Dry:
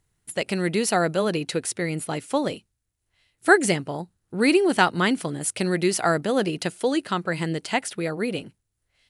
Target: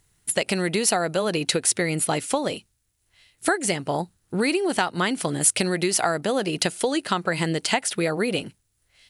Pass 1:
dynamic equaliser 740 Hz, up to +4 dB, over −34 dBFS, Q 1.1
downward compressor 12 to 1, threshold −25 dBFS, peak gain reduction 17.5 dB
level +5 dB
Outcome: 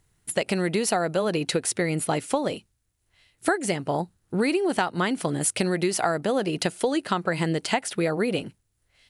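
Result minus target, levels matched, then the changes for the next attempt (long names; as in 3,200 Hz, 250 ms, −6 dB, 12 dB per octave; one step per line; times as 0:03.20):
4,000 Hz band −3.0 dB
add after downward compressor: high-shelf EQ 2,100 Hz +6.5 dB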